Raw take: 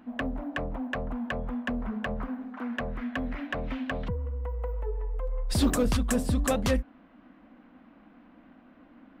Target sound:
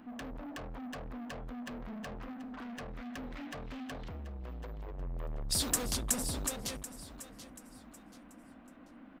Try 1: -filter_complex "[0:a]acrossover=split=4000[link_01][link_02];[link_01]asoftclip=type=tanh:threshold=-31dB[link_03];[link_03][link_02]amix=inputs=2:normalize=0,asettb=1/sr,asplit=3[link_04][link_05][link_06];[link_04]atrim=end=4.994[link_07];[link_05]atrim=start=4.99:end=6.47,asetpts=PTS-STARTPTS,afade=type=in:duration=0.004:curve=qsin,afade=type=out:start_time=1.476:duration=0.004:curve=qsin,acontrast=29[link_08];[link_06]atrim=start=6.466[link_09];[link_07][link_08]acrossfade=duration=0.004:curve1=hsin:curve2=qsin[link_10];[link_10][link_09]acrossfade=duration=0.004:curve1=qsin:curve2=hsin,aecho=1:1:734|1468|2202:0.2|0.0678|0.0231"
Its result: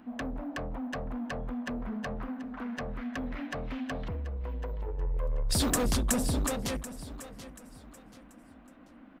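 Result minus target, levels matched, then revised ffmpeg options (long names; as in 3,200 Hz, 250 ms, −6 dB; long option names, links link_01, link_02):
soft clipping: distortion −4 dB
-filter_complex "[0:a]acrossover=split=4000[link_01][link_02];[link_01]asoftclip=type=tanh:threshold=-41.5dB[link_03];[link_03][link_02]amix=inputs=2:normalize=0,asettb=1/sr,asplit=3[link_04][link_05][link_06];[link_04]atrim=end=4.994[link_07];[link_05]atrim=start=4.99:end=6.47,asetpts=PTS-STARTPTS,afade=type=in:duration=0.004:curve=qsin,afade=type=out:start_time=1.476:duration=0.004:curve=qsin,acontrast=29[link_08];[link_06]atrim=start=6.466[link_09];[link_07][link_08]acrossfade=duration=0.004:curve1=hsin:curve2=qsin[link_10];[link_10][link_09]acrossfade=duration=0.004:curve1=qsin:curve2=hsin,aecho=1:1:734|1468|2202:0.2|0.0678|0.0231"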